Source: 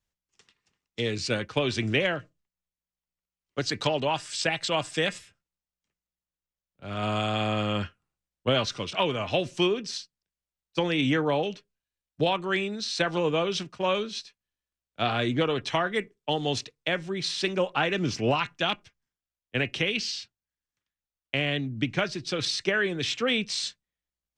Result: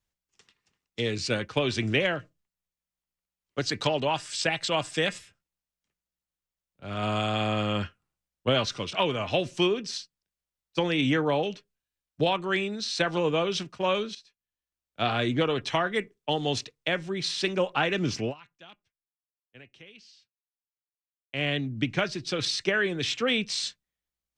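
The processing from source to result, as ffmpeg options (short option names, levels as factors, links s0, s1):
-filter_complex "[0:a]asplit=4[s0][s1][s2][s3];[s0]atrim=end=14.15,asetpts=PTS-STARTPTS,afade=t=out:st=14.146:d=0.004:c=hsin:silence=0.177828[s4];[s1]atrim=start=14.15:end=18.34,asetpts=PTS-STARTPTS,afade=t=in:d=0.91:silence=0.177828,afade=t=out:st=4.06:d=0.13:silence=0.0707946[s5];[s2]atrim=start=18.34:end=21.3,asetpts=PTS-STARTPTS,volume=0.0708[s6];[s3]atrim=start=21.3,asetpts=PTS-STARTPTS,afade=t=in:d=0.13:silence=0.0707946[s7];[s4][s5][s6][s7]concat=n=4:v=0:a=1"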